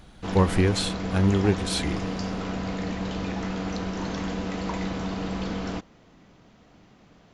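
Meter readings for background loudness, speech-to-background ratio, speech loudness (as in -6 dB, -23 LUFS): -31.0 LUFS, 6.0 dB, -25.0 LUFS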